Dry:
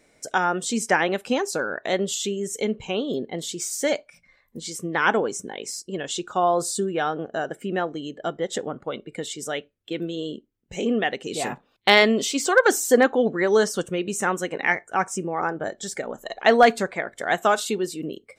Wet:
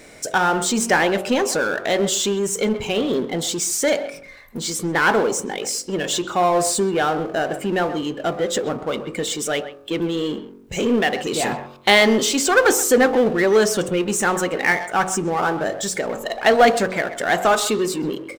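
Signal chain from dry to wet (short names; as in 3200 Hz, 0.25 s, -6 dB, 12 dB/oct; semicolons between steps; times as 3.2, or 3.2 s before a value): de-hum 46.41 Hz, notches 28; power-law curve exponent 0.7; speakerphone echo 0.13 s, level -14 dB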